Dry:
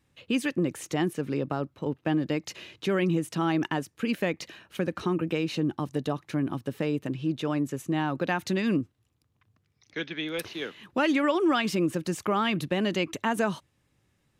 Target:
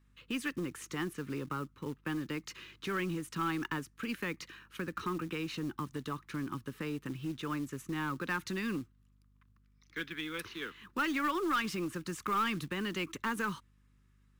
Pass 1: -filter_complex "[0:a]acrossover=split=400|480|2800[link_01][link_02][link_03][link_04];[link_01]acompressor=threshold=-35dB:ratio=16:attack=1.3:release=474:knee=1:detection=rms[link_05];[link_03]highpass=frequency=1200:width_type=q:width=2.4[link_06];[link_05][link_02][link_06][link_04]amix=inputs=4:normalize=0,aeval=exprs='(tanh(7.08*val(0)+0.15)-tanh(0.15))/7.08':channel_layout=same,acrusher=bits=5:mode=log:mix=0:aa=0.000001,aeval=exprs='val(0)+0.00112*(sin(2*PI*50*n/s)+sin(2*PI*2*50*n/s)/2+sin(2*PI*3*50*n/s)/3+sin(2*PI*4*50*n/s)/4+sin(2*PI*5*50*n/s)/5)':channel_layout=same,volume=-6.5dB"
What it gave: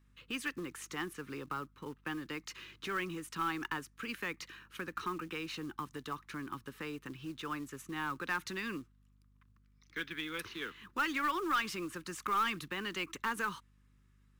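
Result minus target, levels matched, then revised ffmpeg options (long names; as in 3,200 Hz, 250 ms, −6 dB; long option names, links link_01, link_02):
downward compressor: peak gain reduction +9 dB
-filter_complex "[0:a]acrossover=split=400|480|2800[link_01][link_02][link_03][link_04];[link_01]acompressor=threshold=-25.5dB:ratio=16:attack=1.3:release=474:knee=1:detection=rms[link_05];[link_03]highpass=frequency=1200:width_type=q:width=2.4[link_06];[link_05][link_02][link_06][link_04]amix=inputs=4:normalize=0,aeval=exprs='(tanh(7.08*val(0)+0.15)-tanh(0.15))/7.08':channel_layout=same,acrusher=bits=5:mode=log:mix=0:aa=0.000001,aeval=exprs='val(0)+0.00112*(sin(2*PI*50*n/s)+sin(2*PI*2*50*n/s)/2+sin(2*PI*3*50*n/s)/3+sin(2*PI*4*50*n/s)/4+sin(2*PI*5*50*n/s)/5)':channel_layout=same,volume=-6.5dB"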